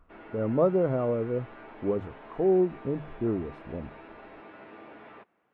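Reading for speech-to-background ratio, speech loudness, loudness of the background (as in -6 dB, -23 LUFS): 19.0 dB, -28.5 LUFS, -47.5 LUFS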